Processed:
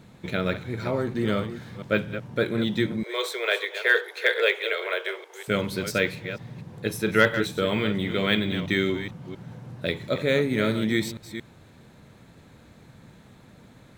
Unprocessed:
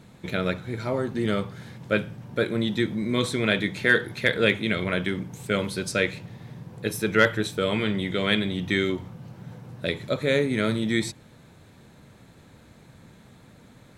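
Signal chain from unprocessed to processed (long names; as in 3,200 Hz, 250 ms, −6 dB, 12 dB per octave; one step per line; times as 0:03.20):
delay that plays each chunk backwards 228 ms, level −10.5 dB
0:03.03–0:05.48: Butterworth high-pass 390 Hz 72 dB per octave
linearly interpolated sample-rate reduction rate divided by 2×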